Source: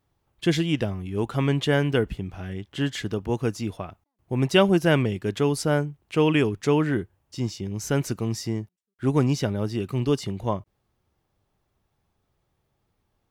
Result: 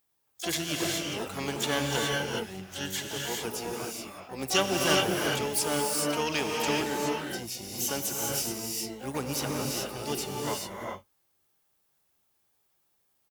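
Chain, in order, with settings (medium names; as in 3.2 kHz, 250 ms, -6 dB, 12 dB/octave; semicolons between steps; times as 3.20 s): harmony voices -12 st -8 dB, +7 st -17 dB, +12 st -9 dB; RIAA curve recording; gated-style reverb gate 450 ms rising, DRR -1 dB; trim -8 dB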